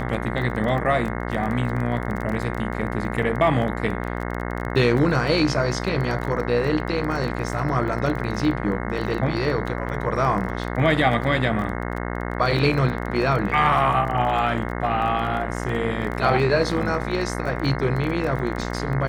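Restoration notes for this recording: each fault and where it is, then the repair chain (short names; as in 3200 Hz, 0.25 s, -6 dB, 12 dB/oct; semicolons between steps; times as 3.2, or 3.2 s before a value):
buzz 60 Hz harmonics 36 -28 dBFS
crackle 23/s -28 dBFS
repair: de-click; de-hum 60 Hz, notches 36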